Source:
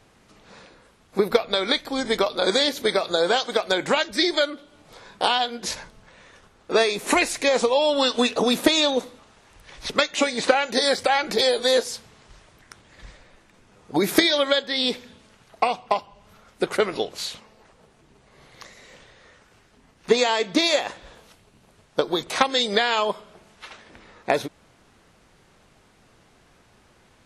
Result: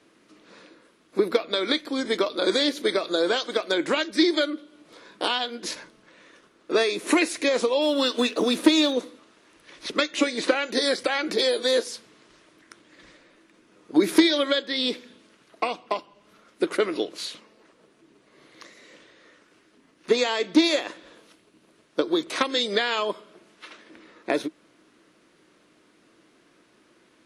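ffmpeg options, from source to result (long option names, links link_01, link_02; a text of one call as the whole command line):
ffmpeg -i in.wav -filter_complex "[0:a]asettb=1/sr,asplit=3[link_01][link_02][link_03];[link_01]atrim=end=7.824[link_04];[link_02]atrim=start=7.82:end=8.93,asetpts=PTS-STARTPTS,afade=type=in:duration=0.004:curve=qsin,afade=type=out:start_time=1.106:duration=0.004:curve=qsin,acrusher=bits=6:mode=log:mix=0:aa=0.000001[link_05];[link_03]atrim=start=8.926[link_06];[link_04][link_05]acrossfade=duration=0.004:curve1=hsin:curve2=qsin[link_07];[link_07][link_06]acrossfade=duration=0.004:curve1=qsin:curve2=hsin,equalizer=frequency=315:width_type=o:width=0.33:gain=11,equalizer=frequency=800:width_type=o:width=0.33:gain=-9,equalizer=frequency=10000:width_type=o:width=0.33:gain=11,acontrast=21,acrossover=split=170 6900:gain=0.0891 1 0.251[link_08][link_09][link_10];[link_08][link_09][link_10]amix=inputs=3:normalize=0,volume=-7dB" out.wav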